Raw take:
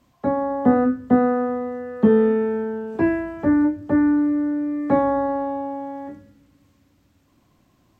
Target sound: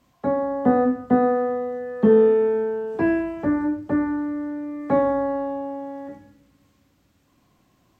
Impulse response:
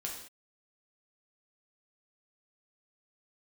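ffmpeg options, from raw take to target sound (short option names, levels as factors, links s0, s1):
-filter_complex "[0:a]asplit=2[s0][s1];[1:a]atrim=start_sample=2205,lowshelf=f=260:g=-10[s2];[s1][s2]afir=irnorm=-1:irlink=0,volume=0.891[s3];[s0][s3]amix=inputs=2:normalize=0,volume=0.596"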